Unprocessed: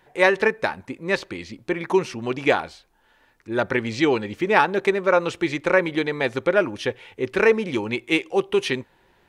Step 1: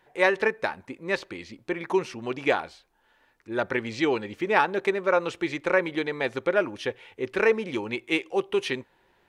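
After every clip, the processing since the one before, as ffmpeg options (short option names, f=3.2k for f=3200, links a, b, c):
-af "bass=f=250:g=-4,treble=f=4k:g=-2,volume=-4dB"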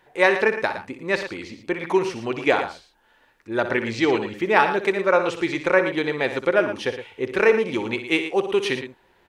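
-af "aecho=1:1:61.22|113.7:0.282|0.282,volume=4dB"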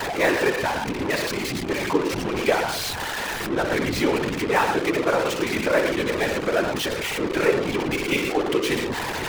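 -af "aeval=exprs='val(0)+0.5*0.168*sgn(val(0))':c=same,afftfilt=real='hypot(re,im)*cos(2*PI*random(0))':imag='hypot(re,im)*sin(2*PI*random(1))':win_size=512:overlap=0.75,anlmdn=100"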